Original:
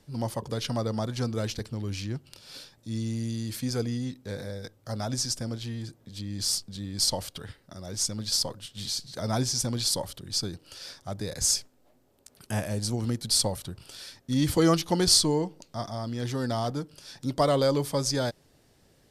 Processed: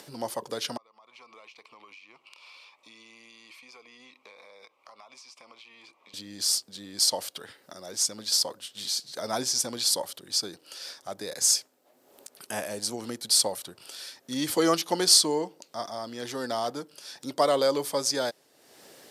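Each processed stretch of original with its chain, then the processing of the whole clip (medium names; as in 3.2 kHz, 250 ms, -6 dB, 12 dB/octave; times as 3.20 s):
0.77–6.14 s: two resonant band-passes 1.6 kHz, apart 1.1 oct + compression 4:1, threshold -60 dBFS
whole clip: high-pass 370 Hz 12 dB/octave; treble shelf 12 kHz +5 dB; upward compressor, threshold -41 dBFS; trim +1.5 dB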